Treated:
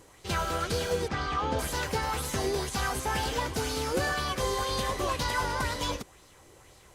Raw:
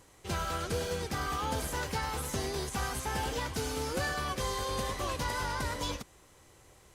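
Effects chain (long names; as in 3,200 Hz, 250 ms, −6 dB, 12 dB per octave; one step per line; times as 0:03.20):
0:01.08–0:01.59: high-frequency loss of the air 120 metres
auto-filter bell 2 Hz 350–4,700 Hz +7 dB
level +2.5 dB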